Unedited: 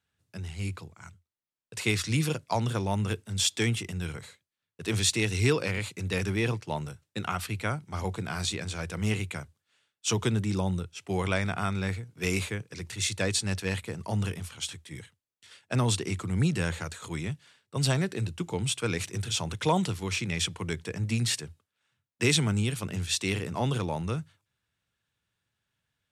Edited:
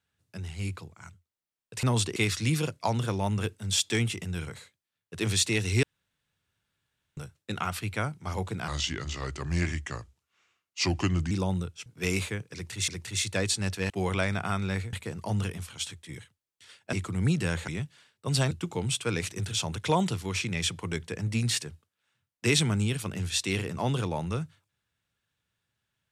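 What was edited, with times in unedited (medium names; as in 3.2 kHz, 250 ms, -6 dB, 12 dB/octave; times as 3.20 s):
5.50–6.84 s: room tone
8.35–10.48 s: speed 81%
11.03–12.06 s: move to 13.75 s
12.73–13.08 s: loop, 2 plays
15.75–16.08 s: move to 1.83 s
16.83–17.17 s: delete
18.00–18.28 s: delete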